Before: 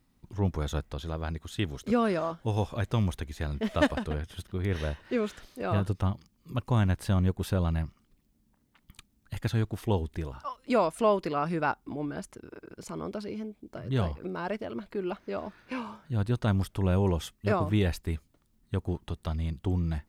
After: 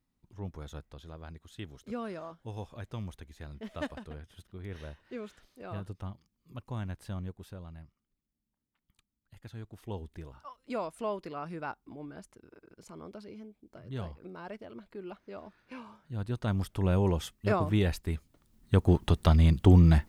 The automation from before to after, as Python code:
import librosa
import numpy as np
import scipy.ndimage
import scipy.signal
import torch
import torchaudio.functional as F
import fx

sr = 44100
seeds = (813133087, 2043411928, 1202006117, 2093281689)

y = fx.gain(x, sr, db=fx.line((7.16, -12.0), (7.63, -18.5), (9.39, -18.5), (10.06, -10.0), (15.86, -10.0), (16.85, -1.0), (18.14, -1.0), (19.03, 10.0)))